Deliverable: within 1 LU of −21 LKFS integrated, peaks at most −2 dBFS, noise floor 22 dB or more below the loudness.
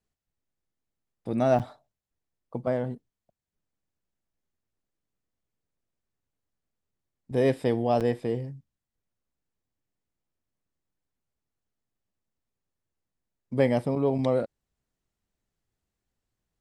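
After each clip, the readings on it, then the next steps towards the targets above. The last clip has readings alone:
number of dropouts 2; longest dropout 7.6 ms; integrated loudness −27.0 LKFS; sample peak −9.5 dBFS; target loudness −21.0 LKFS
→ repair the gap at 0:01.59/0:08.00, 7.6 ms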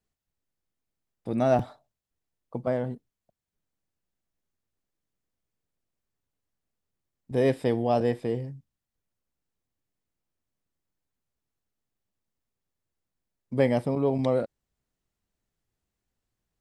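number of dropouts 0; integrated loudness −27.0 LKFS; sample peak −9.5 dBFS; target loudness −21.0 LKFS
→ level +6 dB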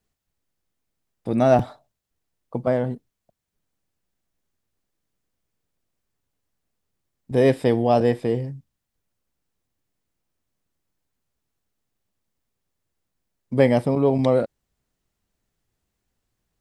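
integrated loudness −21.0 LKFS; sample peak −3.5 dBFS; background noise floor −81 dBFS

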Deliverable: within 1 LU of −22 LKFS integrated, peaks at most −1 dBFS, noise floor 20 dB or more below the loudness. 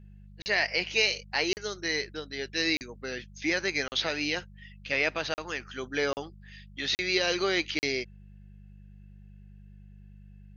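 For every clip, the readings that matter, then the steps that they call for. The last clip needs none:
number of dropouts 8; longest dropout 39 ms; mains hum 50 Hz; hum harmonics up to 200 Hz; level of the hum −48 dBFS; integrated loudness −29.0 LKFS; sample peak −12.0 dBFS; target loudness −22.0 LKFS
→ repair the gap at 0:00.42/0:01.53/0:02.77/0:03.88/0:05.34/0:06.13/0:06.95/0:07.79, 39 ms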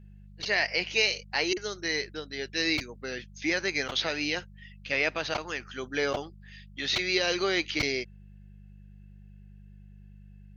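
number of dropouts 0; mains hum 50 Hz; hum harmonics up to 200 Hz; level of the hum −48 dBFS
→ hum removal 50 Hz, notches 4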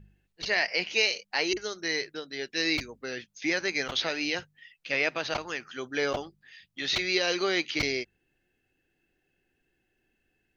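mains hum none found; integrated loudness −29.0 LKFS; sample peak −12.0 dBFS; target loudness −22.0 LKFS
→ level +7 dB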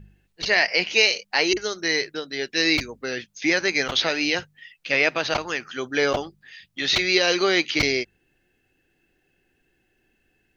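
integrated loudness −22.0 LKFS; sample peak −5.0 dBFS; background noise floor −70 dBFS

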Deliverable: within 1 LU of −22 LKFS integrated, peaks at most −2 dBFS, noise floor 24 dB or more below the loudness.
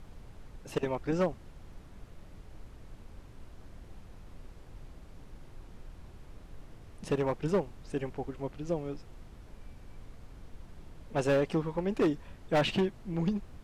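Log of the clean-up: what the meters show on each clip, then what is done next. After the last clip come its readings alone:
share of clipped samples 0.9%; peaks flattened at −22.0 dBFS; background noise floor −52 dBFS; target noise floor −57 dBFS; integrated loudness −32.5 LKFS; sample peak −22.0 dBFS; target loudness −22.0 LKFS
→ clipped peaks rebuilt −22 dBFS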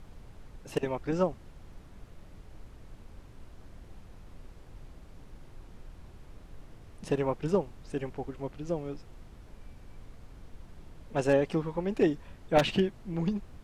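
share of clipped samples 0.0%; background noise floor −52 dBFS; target noise floor −55 dBFS
→ noise reduction from a noise print 6 dB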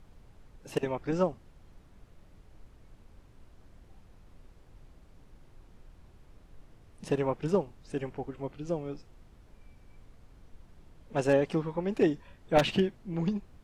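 background noise floor −58 dBFS; integrated loudness −31.0 LKFS; sample peak −13.0 dBFS; target loudness −22.0 LKFS
→ level +9 dB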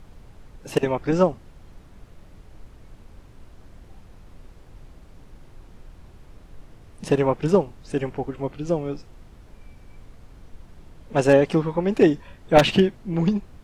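integrated loudness −22.0 LKFS; sample peak −4.0 dBFS; background noise floor −49 dBFS

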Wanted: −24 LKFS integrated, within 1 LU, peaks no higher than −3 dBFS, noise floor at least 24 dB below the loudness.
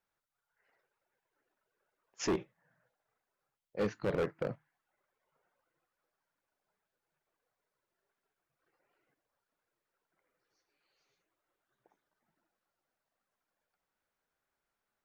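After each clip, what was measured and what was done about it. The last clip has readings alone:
share of clipped samples 0.4%; peaks flattened at −27.0 dBFS; integrated loudness −36.5 LKFS; sample peak −27.0 dBFS; target loudness −24.0 LKFS
→ clipped peaks rebuilt −27 dBFS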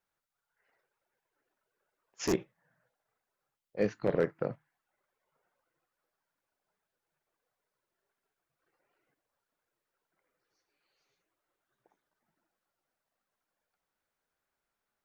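share of clipped samples 0.0%; integrated loudness −33.5 LKFS; sample peak −18.0 dBFS; target loudness −24.0 LKFS
→ level +9.5 dB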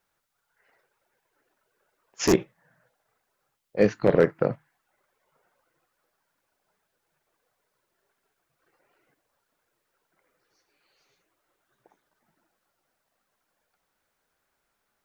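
integrated loudness −24.0 LKFS; sample peak −8.5 dBFS; background noise floor −79 dBFS

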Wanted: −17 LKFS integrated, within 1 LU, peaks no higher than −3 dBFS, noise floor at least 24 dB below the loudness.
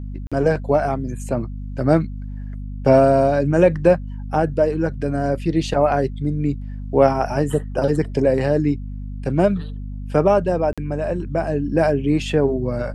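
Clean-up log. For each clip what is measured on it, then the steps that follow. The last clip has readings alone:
number of dropouts 2; longest dropout 46 ms; mains hum 50 Hz; hum harmonics up to 250 Hz; level of the hum −27 dBFS; integrated loudness −19.5 LKFS; sample peak −1.5 dBFS; target loudness −17.0 LKFS
→ repair the gap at 0:00.27/0:10.73, 46 ms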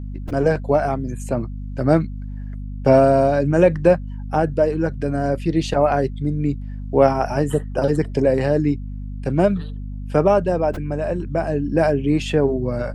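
number of dropouts 0; mains hum 50 Hz; hum harmonics up to 250 Hz; level of the hum −27 dBFS
→ hum removal 50 Hz, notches 5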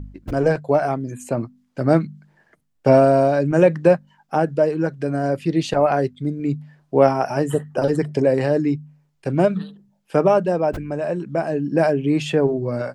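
mains hum none found; integrated loudness −20.0 LKFS; sample peak −2.0 dBFS; target loudness −17.0 LKFS
→ level +3 dB
brickwall limiter −3 dBFS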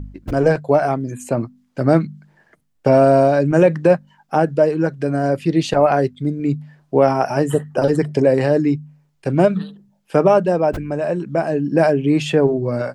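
integrated loudness −17.5 LKFS; sample peak −3.0 dBFS; background noise floor −63 dBFS

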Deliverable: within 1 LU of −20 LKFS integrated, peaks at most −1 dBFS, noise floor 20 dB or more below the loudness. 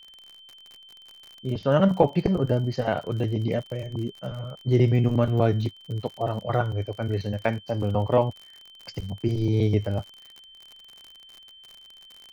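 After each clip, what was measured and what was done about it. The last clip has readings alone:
crackle rate 56 per second; interfering tone 3,100 Hz; level of the tone −47 dBFS; integrated loudness −25.5 LKFS; sample peak −5.0 dBFS; target loudness −20.0 LKFS
→ click removal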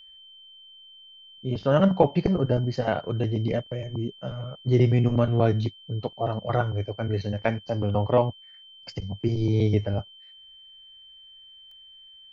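crackle rate 0.16 per second; interfering tone 3,100 Hz; level of the tone −47 dBFS
→ notch filter 3,100 Hz, Q 30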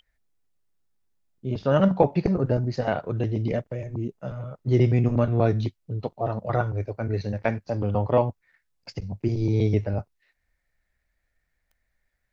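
interfering tone none found; integrated loudness −25.5 LKFS; sample peak −5.0 dBFS; target loudness −20.0 LKFS
→ level +5.5 dB
brickwall limiter −1 dBFS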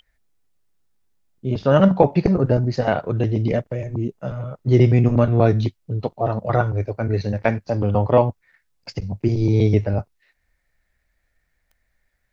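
integrated loudness −20.0 LKFS; sample peak −1.0 dBFS; background noise floor −71 dBFS

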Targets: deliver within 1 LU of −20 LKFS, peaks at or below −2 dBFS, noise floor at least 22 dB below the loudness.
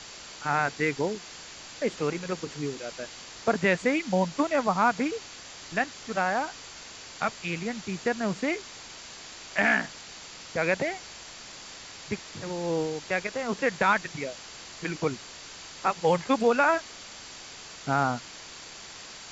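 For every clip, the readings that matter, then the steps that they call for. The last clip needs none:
interfering tone 4,600 Hz; level of the tone −53 dBFS; background noise floor −45 dBFS; target noise floor −51 dBFS; integrated loudness −28.5 LKFS; sample peak −9.0 dBFS; target loudness −20.0 LKFS
→ notch filter 4,600 Hz, Q 30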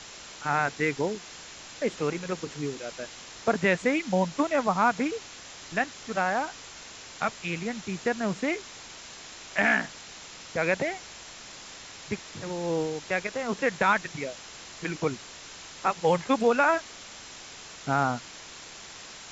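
interfering tone none found; background noise floor −45 dBFS; target noise floor −51 dBFS
→ broadband denoise 6 dB, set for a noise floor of −45 dBFS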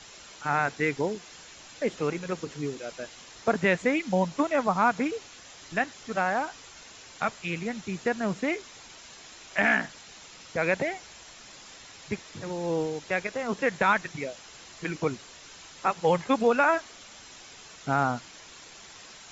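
background noise floor −49 dBFS; target noise floor −51 dBFS
→ broadband denoise 6 dB, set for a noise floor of −49 dBFS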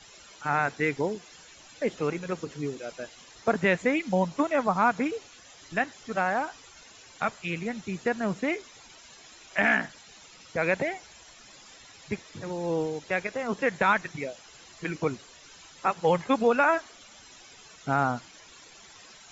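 background noise floor −52 dBFS; integrated loudness −28.5 LKFS; sample peak −9.0 dBFS; target loudness −20.0 LKFS
→ level +8.5 dB
brickwall limiter −2 dBFS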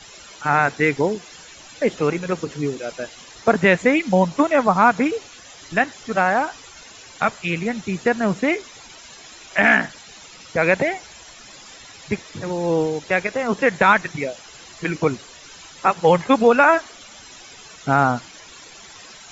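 integrated loudness −20.0 LKFS; sample peak −2.0 dBFS; background noise floor −43 dBFS

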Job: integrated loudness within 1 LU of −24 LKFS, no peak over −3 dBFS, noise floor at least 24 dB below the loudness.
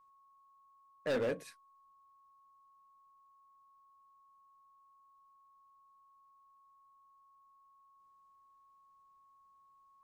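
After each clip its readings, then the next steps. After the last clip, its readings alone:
share of clipped samples 0.4%; peaks flattened at −29.0 dBFS; interfering tone 1,100 Hz; level of the tone −63 dBFS; integrated loudness −37.5 LKFS; sample peak −29.0 dBFS; target loudness −24.0 LKFS
→ clipped peaks rebuilt −29 dBFS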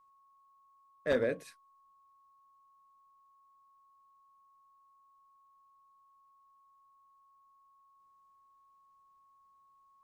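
share of clipped samples 0.0%; interfering tone 1,100 Hz; level of the tone −63 dBFS
→ notch filter 1,100 Hz, Q 30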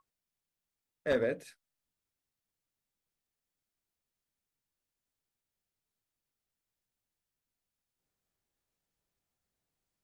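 interfering tone none found; integrated loudness −33.5 LKFS; sample peak −20.0 dBFS; target loudness −24.0 LKFS
→ level +9.5 dB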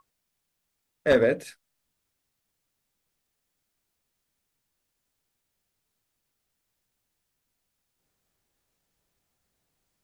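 integrated loudness −24.0 LKFS; sample peak −10.5 dBFS; background noise floor −80 dBFS

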